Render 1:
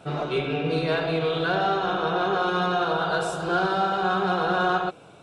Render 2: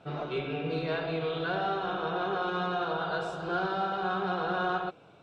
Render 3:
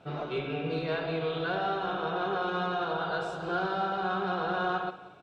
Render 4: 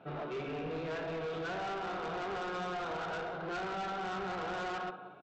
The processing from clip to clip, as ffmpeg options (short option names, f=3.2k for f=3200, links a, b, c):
-af "lowpass=4.6k,volume=-7dB"
-af "aecho=1:1:181|362|543:0.158|0.0507|0.0162"
-af "highpass=140,lowpass=2.5k,aresample=16000,asoftclip=type=tanh:threshold=-35dB,aresample=44100"